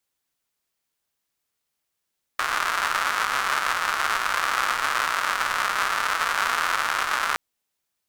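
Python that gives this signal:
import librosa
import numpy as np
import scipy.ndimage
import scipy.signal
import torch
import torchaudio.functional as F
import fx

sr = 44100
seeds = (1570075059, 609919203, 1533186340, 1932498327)

y = fx.rain(sr, seeds[0], length_s=4.97, drops_per_s=240.0, hz=1300.0, bed_db=-25.0)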